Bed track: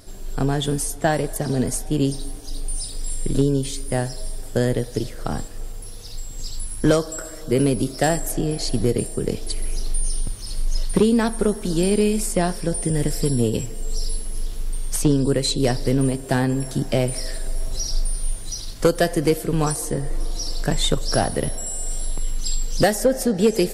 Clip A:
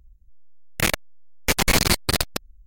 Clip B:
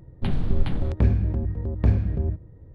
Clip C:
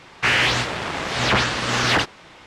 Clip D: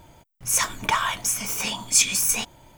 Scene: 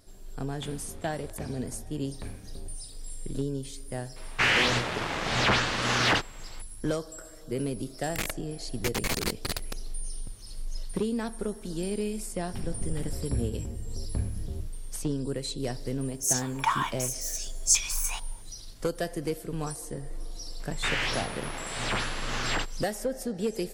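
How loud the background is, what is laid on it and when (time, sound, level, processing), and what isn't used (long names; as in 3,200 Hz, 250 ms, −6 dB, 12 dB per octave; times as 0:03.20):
bed track −12.5 dB
0:00.38: mix in B −11 dB + spectral tilt +3.5 dB per octave
0:04.16: mix in C −5 dB
0:07.36: mix in A −11.5 dB
0:12.31: mix in B −11.5 dB
0:15.75: mix in D −9.5 dB + auto-filter high-pass square 0.75 Hz 920–6,000 Hz
0:20.60: mix in C −11.5 dB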